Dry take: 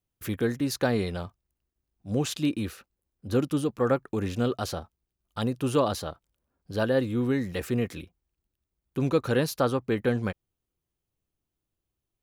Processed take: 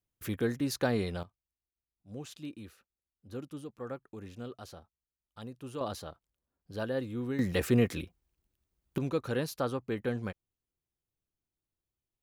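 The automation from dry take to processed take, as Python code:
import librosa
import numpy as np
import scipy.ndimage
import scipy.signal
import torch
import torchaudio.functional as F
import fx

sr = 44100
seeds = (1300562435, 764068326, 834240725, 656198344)

y = fx.gain(x, sr, db=fx.steps((0.0, -4.0), (1.23, -16.0), (5.81, -9.0), (7.39, 2.0), (8.98, -7.5)))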